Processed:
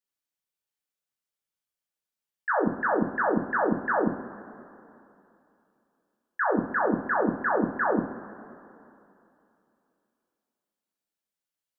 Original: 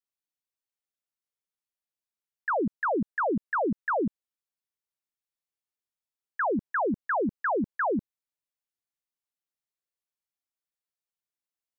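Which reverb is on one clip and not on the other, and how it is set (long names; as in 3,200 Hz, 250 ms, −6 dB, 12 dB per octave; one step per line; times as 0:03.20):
coupled-rooms reverb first 0.48 s, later 2.9 s, from −17 dB, DRR −1.5 dB
level −1.5 dB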